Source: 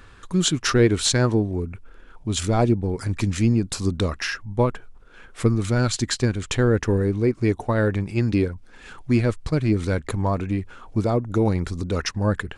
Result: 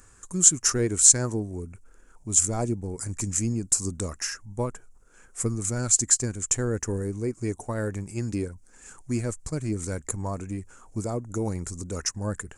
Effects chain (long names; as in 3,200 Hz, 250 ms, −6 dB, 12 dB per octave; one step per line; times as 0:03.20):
high shelf with overshoot 5,200 Hz +13 dB, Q 3
level −8.5 dB